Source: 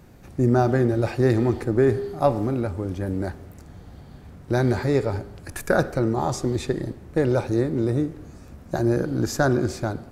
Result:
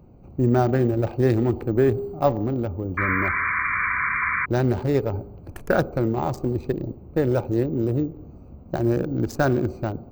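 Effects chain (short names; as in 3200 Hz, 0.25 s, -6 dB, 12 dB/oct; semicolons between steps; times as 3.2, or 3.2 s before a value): Wiener smoothing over 25 samples; careless resampling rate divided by 2×, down none, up hold; painted sound noise, 2.97–4.46, 980–2400 Hz -24 dBFS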